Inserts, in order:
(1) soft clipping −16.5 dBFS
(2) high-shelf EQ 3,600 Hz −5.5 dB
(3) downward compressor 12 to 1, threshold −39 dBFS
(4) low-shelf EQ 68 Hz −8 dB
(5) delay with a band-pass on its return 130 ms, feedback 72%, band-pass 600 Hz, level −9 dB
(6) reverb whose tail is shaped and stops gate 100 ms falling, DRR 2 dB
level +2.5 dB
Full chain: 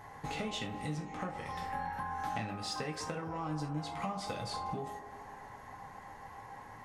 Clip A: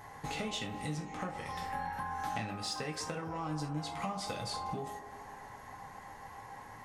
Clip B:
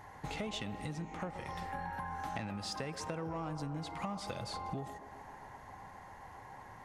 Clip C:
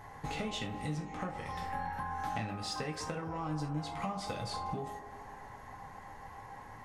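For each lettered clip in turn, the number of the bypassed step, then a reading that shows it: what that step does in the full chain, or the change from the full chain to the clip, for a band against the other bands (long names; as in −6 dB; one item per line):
2, 8 kHz band +3.5 dB
6, echo-to-direct ratio −1.0 dB to −10.0 dB
4, 125 Hz band +1.5 dB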